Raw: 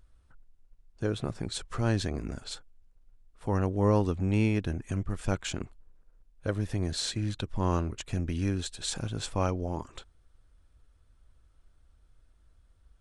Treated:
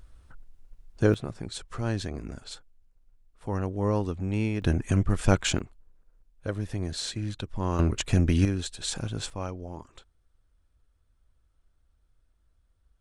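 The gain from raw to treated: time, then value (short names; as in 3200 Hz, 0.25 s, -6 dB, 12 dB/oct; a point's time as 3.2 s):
+8.5 dB
from 1.14 s -2 dB
from 4.62 s +8 dB
from 5.59 s -1 dB
from 7.79 s +9 dB
from 8.45 s +1.5 dB
from 9.3 s -6 dB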